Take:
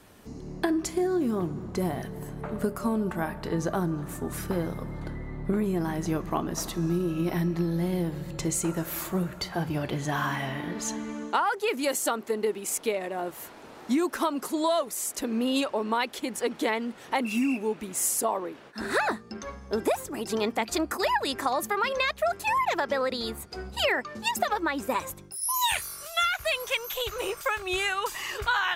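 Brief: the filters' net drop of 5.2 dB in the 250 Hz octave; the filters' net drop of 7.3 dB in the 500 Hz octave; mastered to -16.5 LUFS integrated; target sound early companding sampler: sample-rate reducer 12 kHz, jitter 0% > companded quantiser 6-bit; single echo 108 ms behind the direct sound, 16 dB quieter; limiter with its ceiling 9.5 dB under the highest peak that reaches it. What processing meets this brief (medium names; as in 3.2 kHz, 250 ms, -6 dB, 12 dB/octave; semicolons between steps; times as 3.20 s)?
peaking EQ 250 Hz -4.5 dB; peaking EQ 500 Hz -8.5 dB; peak limiter -22 dBFS; delay 108 ms -16 dB; sample-rate reducer 12 kHz, jitter 0%; companded quantiser 6-bit; trim +16.5 dB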